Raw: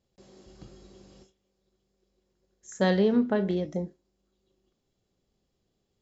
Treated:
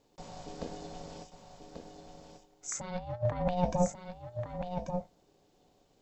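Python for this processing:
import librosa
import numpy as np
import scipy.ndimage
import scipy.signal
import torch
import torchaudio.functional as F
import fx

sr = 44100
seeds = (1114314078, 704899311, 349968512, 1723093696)

y = fx.over_compress(x, sr, threshold_db=-31.0, ratio=-0.5)
y = y * np.sin(2.0 * np.pi * 360.0 * np.arange(len(y)) / sr)
y = y + 10.0 ** (-7.0 / 20.0) * np.pad(y, (int(1138 * sr / 1000.0), 0))[:len(y)]
y = y * librosa.db_to_amplitude(4.0)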